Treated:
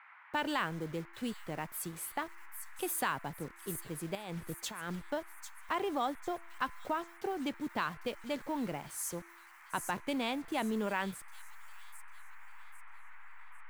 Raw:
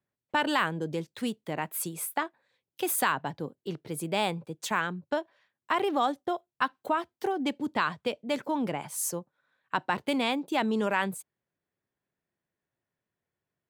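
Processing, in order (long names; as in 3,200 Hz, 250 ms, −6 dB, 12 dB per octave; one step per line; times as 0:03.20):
hold until the input has moved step −43 dBFS
low-shelf EQ 99 Hz +8.5 dB
0:04.15–0:05.03: compressor whose output falls as the input rises −34 dBFS, ratio −1
noise in a band 870–2,200 Hz −50 dBFS
tuned comb filter 340 Hz, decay 0.81 s, mix 40%
delay with a high-pass on its return 798 ms, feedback 39%, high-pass 5,500 Hz, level −6 dB
level −3 dB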